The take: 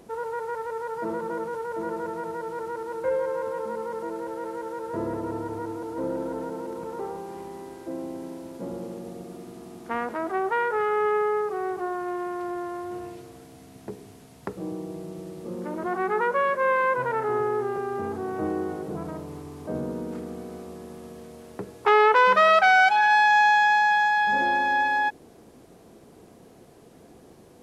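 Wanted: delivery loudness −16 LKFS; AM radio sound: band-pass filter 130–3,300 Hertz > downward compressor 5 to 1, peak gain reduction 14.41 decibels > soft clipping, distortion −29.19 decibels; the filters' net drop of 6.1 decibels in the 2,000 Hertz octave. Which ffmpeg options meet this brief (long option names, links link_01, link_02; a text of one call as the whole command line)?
ffmpeg -i in.wav -af "highpass=130,lowpass=3300,equalizer=frequency=2000:width_type=o:gain=-8,acompressor=threshold=-31dB:ratio=5,asoftclip=threshold=-21.5dB,volume=19.5dB" out.wav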